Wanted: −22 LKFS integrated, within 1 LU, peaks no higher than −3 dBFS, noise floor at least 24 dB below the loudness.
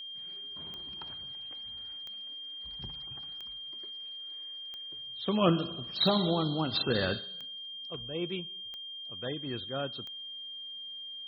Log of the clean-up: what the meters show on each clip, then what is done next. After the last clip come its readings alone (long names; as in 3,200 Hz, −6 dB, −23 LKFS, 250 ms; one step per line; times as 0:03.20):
number of clicks 8; interfering tone 3,200 Hz; level of the tone −40 dBFS; integrated loudness −34.5 LKFS; sample peak −14.0 dBFS; target loudness −22.0 LKFS
→ click removal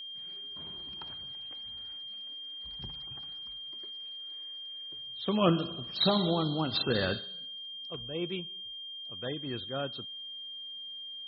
number of clicks 0; interfering tone 3,200 Hz; level of the tone −40 dBFS
→ notch filter 3,200 Hz, Q 30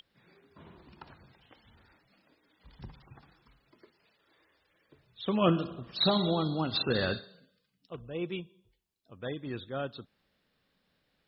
interfering tone none found; integrated loudness −31.5 LKFS; sample peak −14.5 dBFS; target loudness −22.0 LKFS
→ level +9.5 dB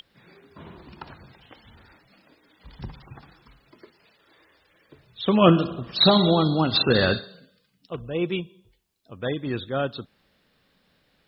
integrated loudness −22.0 LKFS; sample peak −5.0 dBFS; background noise floor −67 dBFS